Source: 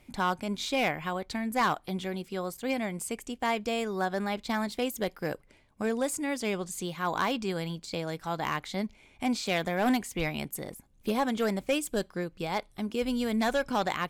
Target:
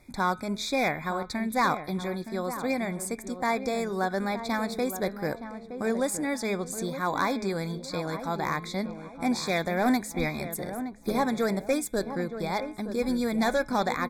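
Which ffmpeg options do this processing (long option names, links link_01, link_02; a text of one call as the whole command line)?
ffmpeg -i in.wav -filter_complex "[0:a]asuperstop=centerf=2900:order=20:qfactor=3.2,bandreject=frequency=212.9:width_type=h:width=4,bandreject=frequency=425.8:width_type=h:width=4,bandreject=frequency=638.7:width_type=h:width=4,bandreject=frequency=851.6:width_type=h:width=4,bandreject=frequency=1064.5:width_type=h:width=4,bandreject=frequency=1277.4:width_type=h:width=4,bandreject=frequency=1490.3:width_type=h:width=4,bandreject=frequency=1703.2:width_type=h:width=4,bandreject=frequency=1916.1:width_type=h:width=4,bandreject=frequency=2129:width_type=h:width=4,bandreject=frequency=2341.9:width_type=h:width=4,bandreject=frequency=2554.8:width_type=h:width=4,bandreject=frequency=2767.7:width_type=h:width=4,bandreject=frequency=2980.6:width_type=h:width=4,bandreject=frequency=3193.5:width_type=h:width=4,bandreject=frequency=3406.4:width_type=h:width=4,bandreject=frequency=3619.3:width_type=h:width=4,bandreject=frequency=3832.2:width_type=h:width=4,bandreject=frequency=4045.1:width_type=h:width=4,asplit=2[link_01][link_02];[link_02]adelay=919,lowpass=frequency=1100:poles=1,volume=-9.5dB,asplit=2[link_03][link_04];[link_04]adelay=919,lowpass=frequency=1100:poles=1,volume=0.44,asplit=2[link_05][link_06];[link_06]adelay=919,lowpass=frequency=1100:poles=1,volume=0.44,asplit=2[link_07][link_08];[link_08]adelay=919,lowpass=frequency=1100:poles=1,volume=0.44,asplit=2[link_09][link_10];[link_10]adelay=919,lowpass=frequency=1100:poles=1,volume=0.44[link_11];[link_03][link_05][link_07][link_09][link_11]amix=inputs=5:normalize=0[link_12];[link_01][link_12]amix=inputs=2:normalize=0,volume=2dB" out.wav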